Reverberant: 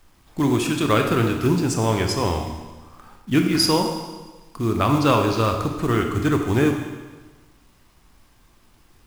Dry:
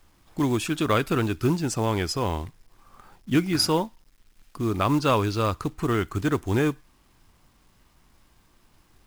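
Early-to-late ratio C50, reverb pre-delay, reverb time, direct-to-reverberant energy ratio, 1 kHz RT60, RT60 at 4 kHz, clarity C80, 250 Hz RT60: 5.0 dB, 25 ms, 1.3 s, 3.5 dB, 1.3 s, 1.3 s, 7.0 dB, 1.2 s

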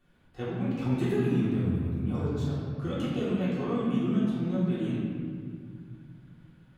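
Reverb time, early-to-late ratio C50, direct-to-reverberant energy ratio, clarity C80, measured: 2.0 s, -2.0 dB, -9.5 dB, 0.0 dB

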